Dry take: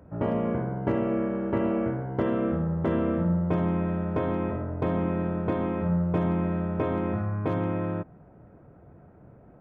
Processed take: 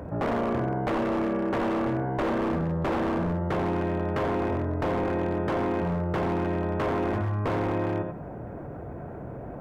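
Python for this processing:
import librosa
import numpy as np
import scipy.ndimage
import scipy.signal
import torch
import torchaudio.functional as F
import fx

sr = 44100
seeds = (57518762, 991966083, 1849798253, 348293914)

y = fx.peak_eq(x, sr, hz=180.0, db=-3.5, octaves=0.28)
y = fx.notch(y, sr, hz=1300.0, q=16.0)
y = fx.echo_multitap(y, sr, ms=(55, 89), db=(-19.0, -11.5))
y = 10.0 ** (-24.0 / 20.0) * (np.abs((y / 10.0 ** (-24.0 / 20.0) + 3.0) % 4.0 - 2.0) - 1.0)
y = fx.peak_eq(y, sr, hz=780.0, db=3.5, octaves=2.8)
y = fx.env_flatten(y, sr, amount_pct=50)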